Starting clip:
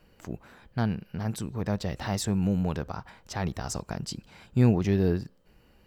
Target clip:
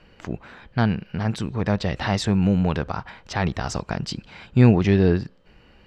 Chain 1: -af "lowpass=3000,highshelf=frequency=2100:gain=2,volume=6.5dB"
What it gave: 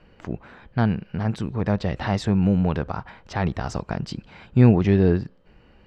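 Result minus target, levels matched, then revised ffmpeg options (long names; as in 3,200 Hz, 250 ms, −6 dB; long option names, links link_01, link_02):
4,000 Hz band −6.0 dB
-af "lowpass=3000,highshelf=frequency=2100:gain=10,volume=6.5dB"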